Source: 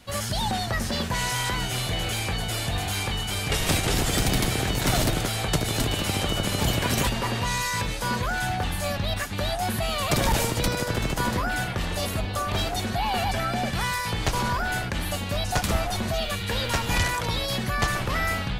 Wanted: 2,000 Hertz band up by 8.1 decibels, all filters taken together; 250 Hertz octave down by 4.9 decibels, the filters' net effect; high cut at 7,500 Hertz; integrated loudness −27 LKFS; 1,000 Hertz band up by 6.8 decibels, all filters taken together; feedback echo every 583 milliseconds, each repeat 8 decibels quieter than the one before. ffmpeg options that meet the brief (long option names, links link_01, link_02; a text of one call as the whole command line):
ffmpeg -i in.wav -af "lowpass=7500,equalizer=frequency=250:width_type=o:gain=-7.5,equalizer=frequency=1000:width_type=o:gain=7,equalizer=frequency=2000:width_type=o:gain=8,aecho=1:1:583|1166|1749|2332|2915:0.398|0.159|0.0637|0.0255|0.0102,volume=-6dB" out.wav